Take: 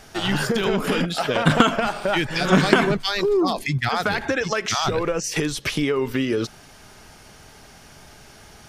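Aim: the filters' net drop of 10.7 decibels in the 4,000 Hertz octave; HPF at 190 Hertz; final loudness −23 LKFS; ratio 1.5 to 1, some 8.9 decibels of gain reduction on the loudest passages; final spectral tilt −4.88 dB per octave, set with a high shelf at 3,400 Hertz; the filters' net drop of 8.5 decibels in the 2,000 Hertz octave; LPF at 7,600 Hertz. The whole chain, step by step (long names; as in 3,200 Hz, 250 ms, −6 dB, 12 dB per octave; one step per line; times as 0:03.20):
high-pass filter 190 Hz
low-pass filter 7,600 Hz
parametric band 2,000 Hz −9 dB
high-shelf EQ 3,400 Hz −5 dB
parametric band 4,000 Hz −7 dB
downward compressor 1.5 to 1, threshold −39 dBFS
level +8.5 dB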